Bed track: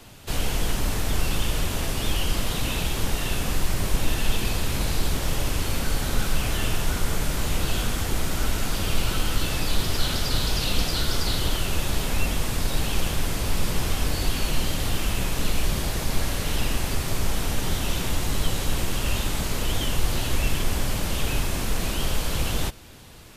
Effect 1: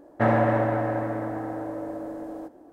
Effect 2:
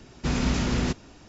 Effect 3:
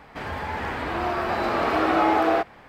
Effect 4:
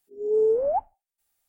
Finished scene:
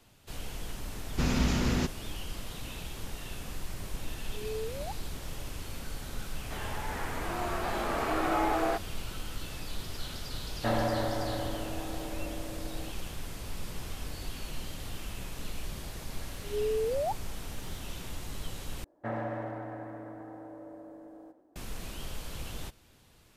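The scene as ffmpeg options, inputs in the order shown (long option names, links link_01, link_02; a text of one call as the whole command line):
ffmpeg -i bed.wav -i cue0.wav -i cue1.wav -i cue2.wav -i cue3.wav -filter_complex "[4:a]asplit=2[link_01][link_02];[1:a]asplit=2[link_03][link_04];[0:a]volume=-14.5dB[link_05];[link_02]acompressor=threshold=-27dB:ratio=6:attack=3.2:release=140:knee=1:detection=peak[link_06];[link_04]asplit=2[link_07][link_08];[link_08]adelay=100,highpass=300,lowpass=3400,asoftclip=type=hard:threshold=-20dB,volume=-11dB[link_09];[link_07][link_09]amix=inputs=2:normalize=0[link_10];[link_05]asplit=2[link_11][link_12];[link_11]atrim=end=18.844[link_13];[link_10]atrim=end=2.72,asetpts=PTS-STARTPTS,volume=-14.5dB[link_14];[link_12]atrim=start=21.556[link_15];[2:a]atrim=end=1.28,asetpts=PTS-STARTPTS,volume=-3dB,afade=type=in:duration=0.004:curve=hsin,afade=type=out:start_time=1.276:duration=0.004:curve=hsin,adelay=940[link_16];[link_01]atrim=end=1.48,asetpts=PTS-STARTPTS,volume=-16.5dB,afade=type=in:duration=0.004:curve=hsin,afade=type=out:start_time=1.476:duration=0.004:curve=hsin,adelay=182133S[link_17];[3:a]atrim=end=2.68,asetpts=PTS-STARTPTS,volume=-8.5dB,afade=type=in:duration=0.004:curve=hsin,afade=type=out:start_time=2.676:duration=0.004:curve=hsin,adelay=6350[link_18];[link_03]atrim=end=2.72,asetpts=PTS-STARTPTS,volume=-8.5dB,afade=type=in:duration=0.004:curve=hsin,afade=type=out:start_time=2.716:duration=0.004:curve=hsin,adelay=10440[link_19];[link_06]atrim=end=1.48,asetpts=PTS-STARTPTS,volume=-1.5dB,afade=type=in:duration=0.004:curve=hsin,afade=type=out:start_time=1.476:duration=0.004:curve=hsin,adelay=16330[link_20];[link_13][link_14]acrossfade=duration=0.004:curve1=hsin:curve2=hsin[link_21];[link_21][link_15]acrossfade=duration=0.004:curve1=hsin:curve2=hsin[link_22];[link_22][link_16][link_17][link_18][link_19][link_20]amix=inputs=6:normalize=0" out.wav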